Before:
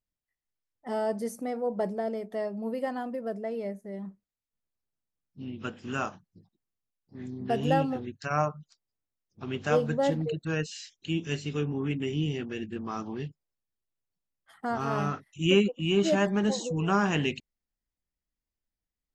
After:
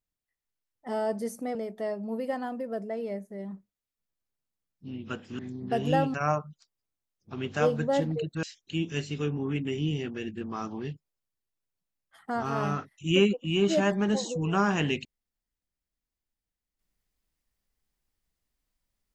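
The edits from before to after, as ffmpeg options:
ffmpeg -i in.wav -filter_complex "[0:a]asplit=5[link_01][link_02][link_03][link_04][link_05];[link_01]atrim=end=1.552[link_06];[link_02]atrim=start=2.088:end=5.932[link_07];[link_03]atrim=start=7.168:end=7.922[link_08];[link_04]atrim=start=8.238:end=10.532[link_09];[link_05]atrim=start=10.778[link_10];[link_06][link_07]acrossfade=duration=0.004:curve1=hsin:curve2=hsin[link_11];[link_11][link_08]acrossfade=duration=0.004:curve1=hsin:curve2=hsin[link_12];[link_12][link_09]acrossfade=duration=0.004:curve1=hsin:curve2=hsin[link_13];[link_13][link_10]acrossfade=duration=0.004:curve1=hsin:curve2=hsin" out.wav

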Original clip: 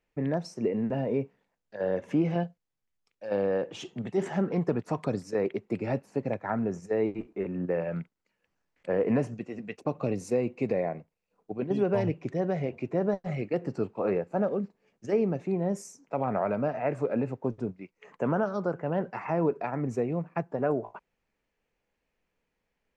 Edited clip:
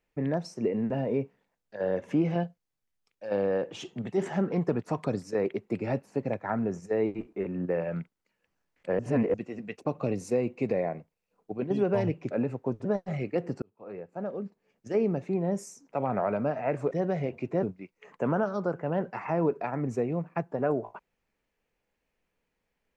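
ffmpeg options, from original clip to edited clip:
ffmpeg -i in.wav -filter_complex "[0:a]asplit=8[link_01][link_02][link_03][link_04][link_05][link_06][link_07][link_08];[link_01]atrim=end=8.992[link_09];[link_02]atrim=start=8.988:end=9.342,asetpts=PTS-STARTPTS,areverse[link_10];[link_03]atrim=start=9.338:end=12.312[link_11];[link_04]atrim=start=17.088:end=17.632[link_12];[link_05]atrim=start=13.028:end=13.8,asetpts=PTS-STARTPTS,afade=type=out:start_time=0.768:duration=0.004:curve=hsin[link_13];[link_06]atrim=start=13.8:end=17.092,asetpts=PTS-STARTPTS,afade=type=in:duration=1.45[link_14];[link_07]atrim=start=12.308:end=13.032[link_15];[link_08]atrim=start=17.628[link_16];[link_09][link_10]acrossfade=duration=0.004:curve1=hsin:curve2=hsin[link_17];[link_17][link_11]acrossfade=duration=0.004:curve1=hsin:curve2=hsin[link_18];[link_18][link_12]acrossfade=duration=0.004:curve1=hsin:curve2=hsin[link_19];[link_13][link_14]concat=n=2:v=0:a=1[link_20];[link_19][link_20]acrossfade=duration=0.004:curve1=hsin:curve2=hsin[link_21];[link_21][link_15]acrossfade=duration=0.004:curve1=hsin:curve2=hsin[link_22];[link_22][link_16]acrossfade=duration=0.004:curve1=hsin:curve2=hsin" out.wav

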